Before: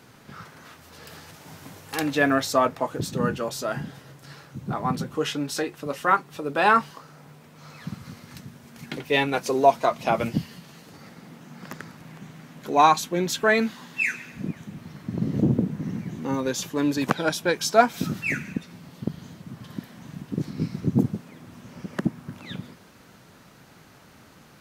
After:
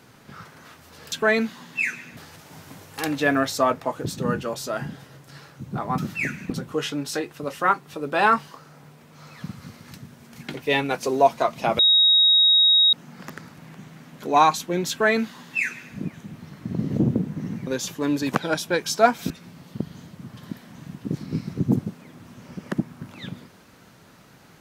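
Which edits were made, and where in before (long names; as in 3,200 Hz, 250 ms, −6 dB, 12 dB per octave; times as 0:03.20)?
0:10.22–0:11.36: beep over 3,780 Hz −13 dBFS
0:13.33–0:14.38: duplicate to 0:01.12
0:16.10–0:16.42: remove
0:18.05–0:18.57: move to 0:04.93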